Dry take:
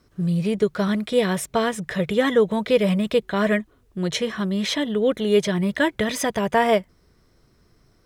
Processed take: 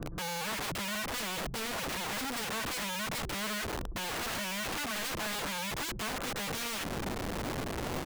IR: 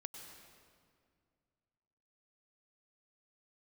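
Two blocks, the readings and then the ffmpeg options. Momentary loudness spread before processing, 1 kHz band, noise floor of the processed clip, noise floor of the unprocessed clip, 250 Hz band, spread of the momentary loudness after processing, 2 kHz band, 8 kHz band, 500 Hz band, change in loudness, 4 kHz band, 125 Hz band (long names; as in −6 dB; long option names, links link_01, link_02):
6 LU, −9.0 dB, −39 dBFS, −60 dBFS, −17.5 dB, 2 LU, −7.0 dB, −2.0 dB, −19.5 dB, −12.5 dB, −5.0 dB, −14.0 dB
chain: -filter_complex "[0:a]aemphasis=mode=reproduction:type=riaa,acrossover=split=350[link_01][link_02];[link_01]acontrast=84[link_03];[link_03][link_02]amix=inputs=2:normalize=0,lowpass=frequency=1400:width=0.5412,lowpass=frequency=1400:width=1.3066,volume=16dB,asoftclip=hard,volume=-16dB,lowshelf=frequency=400:gain=5.5,asplit=2[link_04][link_05];[link_05]highpass=frequency=720:poles=1,volume=23dB,asoftclip=type=tanh:threshold=-10.5dB[link_06];[link_04][link_06]amix=inputs=2:normalize=0,lowpass=frequency=1000:poles=1,volume=-6dB,areverse,acompressor=threshold=-26dB:ratio=8,areverse,aecho=1:1:5.9:0.76,aeval=exprs='(mod(35.5*val(0)+1,2)-1)/35.5':channel_layout=same"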